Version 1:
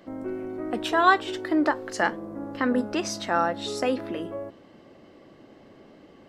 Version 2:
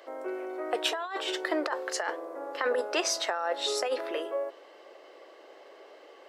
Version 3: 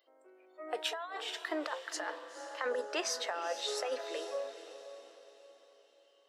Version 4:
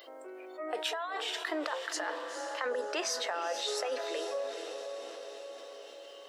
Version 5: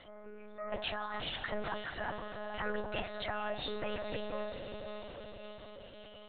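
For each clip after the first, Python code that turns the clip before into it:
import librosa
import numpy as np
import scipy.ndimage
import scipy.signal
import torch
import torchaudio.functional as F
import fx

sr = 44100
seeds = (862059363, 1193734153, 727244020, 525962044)

y1 = scipy.signal.sosfilt(scipy.signal.butter(6, 410.0, 'highpass', fs=sr, output='sos'), x)
y1 = fx.over_compress(y1, sr, threshold_db=-29.0, ratio=-1.0)
y2 = fx.noise_reduce_blind(y1, sr, reduce_db=19)
y2 = fx.echo_diffused(y2, sr, ms=475, feedback_pct=43, wet_db=-11.0)
y2 = F.gain(torch.from_numpy(y2), -6.5).numpy()
y3 = fx.env_flatten(y2, sr, amount_pct=50)
y4 = fx.lpc_monotone(y3, sr, seeds[0], pitch_hz=210.0, order=10)
y4 = F.gain(torch.from_numpy(y4), -2.5).numpy()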